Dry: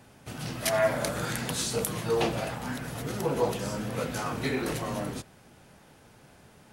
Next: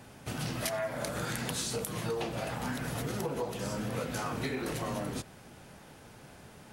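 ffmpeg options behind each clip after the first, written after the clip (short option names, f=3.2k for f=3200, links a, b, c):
-af "acompressor=threshold=-34dB:ratio=10,volume=3dB"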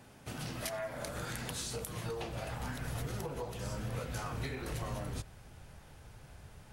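-af "asubboost=boost=7.5:cutoff=85,volume=-5dB"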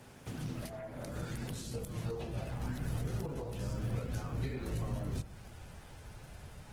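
-filter_complex "[0:a]bandreject=f=69.51:t=h:w=4,bandreject=f=139.02:t=h:w=4,bandreject=f=208.53:t=h:w=4,bandreject=f=278.04:t=h:w=4,bandreject=f=347.55:t=h:w=4,bandreject=f=417.06:t=h:w=4,bandreject=f=486.57:t=h:w=4,bandreject=f=556.08:t=h:w=4,bandreject=f=625.59:t=h:w=4,bandreject=f=695.1:t=h:w=4,bandreject=f=764.61:t=h:w=4,bandreject=f=834.12:t=h:w=4,bandreject=f=903.63:t=h:w=4,bandreject=f=973.14:t=h:w=4,bandreject=f=1.04265k:t=h:w=4,bandreject=f=1.11216k:t=h:w=4,bandreject=f=1.18167k:t=h:w=4,bandreject=f=1.25118k:t=h:w=4,bandreject=f=1.32069k:t=h:w=4,bandreject=f=1.3902k:t=h:w=4,bandreject=f=1.45971k:t=h:w=4,bandreject=f=1.52922k:t=h:w=4,bandreject=f=1.59873k:t=h:w=4,bandreject=f=1.66824k:t=h:w=4,bandreject=f=1.73775k:t=h:w=4,bandreject=f=1.80726k:t=h:w=4,bandreject=f=1.87677k:t=h:w=4,bandreject=f=1.94628k:t=h:w=4,bandreject=f=2.01579k:t=h:w=4,acrossover=split=440[a][b];[b]acompressor=threshold=-54dB:ratio=3[c];[a][c]amix=inputs=2:normalize=0,volume=3.5dB" -ar 48000 -c:a libopus -b:a 16k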